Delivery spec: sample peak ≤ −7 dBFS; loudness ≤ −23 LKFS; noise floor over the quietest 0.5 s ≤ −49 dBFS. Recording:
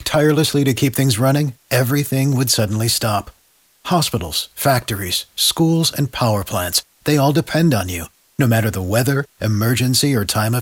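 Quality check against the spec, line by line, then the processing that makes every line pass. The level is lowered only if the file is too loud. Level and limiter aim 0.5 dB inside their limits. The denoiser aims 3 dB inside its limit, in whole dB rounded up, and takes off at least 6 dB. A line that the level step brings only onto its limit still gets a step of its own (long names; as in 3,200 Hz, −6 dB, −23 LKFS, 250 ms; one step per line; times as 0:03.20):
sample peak −3.5 dBFS: out of spec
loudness −17.0 LKFS: out of spec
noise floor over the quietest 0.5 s −57 dBFS: in spec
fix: level −6.5 dB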